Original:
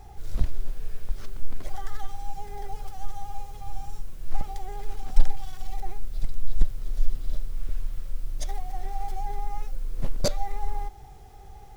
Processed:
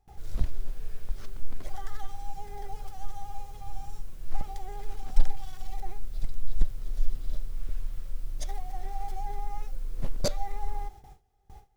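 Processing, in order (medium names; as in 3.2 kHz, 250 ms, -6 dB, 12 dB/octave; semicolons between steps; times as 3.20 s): gate with hold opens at -35 dBFS; trim -3 dB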